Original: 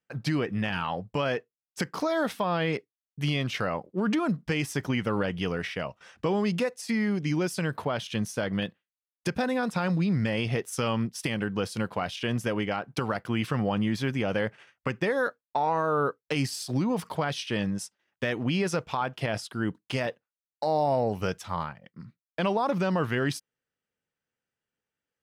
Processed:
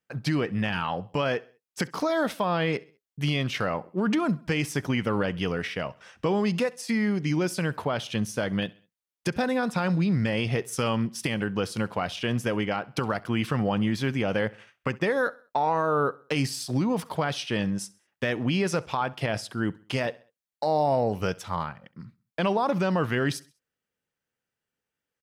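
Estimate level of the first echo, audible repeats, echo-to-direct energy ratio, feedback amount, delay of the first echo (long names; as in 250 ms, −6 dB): −22.5 dB, 2, −21.5 dB, 43%, 66 ms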